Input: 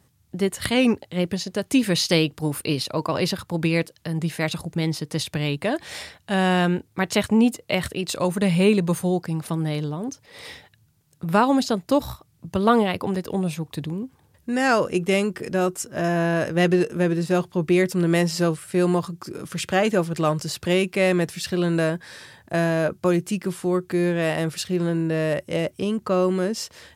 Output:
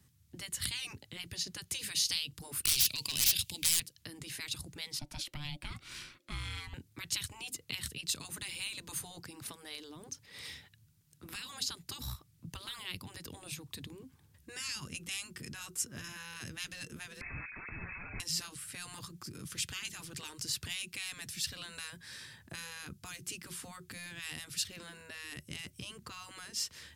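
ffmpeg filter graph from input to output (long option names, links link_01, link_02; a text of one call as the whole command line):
ffmpeg -i in.wav -filter_complex "[0:a]asettb=1/sr,asplit=3[link_01][link_02][link_03];[link_01]atrim=end=2.654[link_04];[link_02]atrim=start=2.65:end=3.8,asetpts=PTS-STARTPTS,afade=type=in:duration=0.004:curve=qsin,afade=type=out:start_time=1.146:duration=0.004:curve=qsin,highshelf=frequency=1900:width_type=q:width=3:gain=12,aeval=exprs='0.211*(abs(mod(val(0)/0.211+3,4)-2)-1)':channel_layout=same[link_05];[link_03]atrim=start=3.796[link_06];[link_04][link_05]acrossfade=duration=0.004:curve1=hsin:curve2=qsin[link_07];[link_07][link_06]acrossfade=duration=0.004:curve1=qsin:curve2=hsin,asettb=1/sr,asplit=3[link_08][link_09][link_10];[link_08]atrim=end=4.994[link_11];[link_09]atrim=start=4.99:end=6.74,asetpts=PTS-STARTPTS,afade=type=in:duration=0.004:curve=qsin,afade=type=out:start_time=1.746:duration=0.004:curve=qsin,bass=frequency=250:gain=1,treble=frequency=4000:gain=-5,aeval=exprs='val(0)*sin(2*PI*440*n/s)':channel_layout=same[link_12];[link_10]atrim=start=6.736[link_13];[link_11][link_12]acrossfade=duration=0.004:curve1=hsin:curve2=qsin[link_14];[link_14][link_13]acrossfade=duration=0.004:curve1=qsin:curve2=hsin,asettb=1/sr,asplit=3[link_15][link_16][link_17];[link_15]atrim=end=17.214[link_18];[link_16]atrim=start=17.21:end=18.2,asetpts=PTS-STARTPTS,afade=type=in:duration=0.004:curve=qsin,afade=type=out:start_time=0.986:duration=0.004:curve=qsin,aeval=exprs='0.398*sin(PI/2*5.62*val(0)/0.398)':channel_layout=same,asplit=2[link_19][link_20];[link_20]adelay=49,volume=-11.5dB[link_21];[link_19][link_21]amix=inputs=2:normalize=0,atrim=end_sample=43659,lowpass=frequency=2200:width_type=q:width=0.5098,lowpass=frequency=2200:width_type=q:width=0.6013,lowpass=frequency=2200:width_type=q:width=0.9,lowpass=frequency=2200:width_type=q:width=2.563,afreqshift=-2600[link_22];[link_17]atrim=start=18.196[link_23];[link_18][link_22]acrossfade=duration=0.004:curve1=hsin:curve2=qsin[link_24];[link_24][link_23]acrossfade=duration=0.004:curve1=qsin:curve2=hsin,afftfilt=real='re*lt(hypot(re,im),0.251)':imag='im*lt(hypot(re,im),0.251)':win_size=1024:overlap=0.75,equalizer=frequency=620:width_type=o:width=1.7:gain=-13,acrossover=split=170|3000[link_25][link_26][link_27];[link_26]acompressor=threshold=-45dB:ratio=5[link_28];[link_25][link_28][link_27]amix=inputs=3:normalize=0,volume=-3.5dB" out.wav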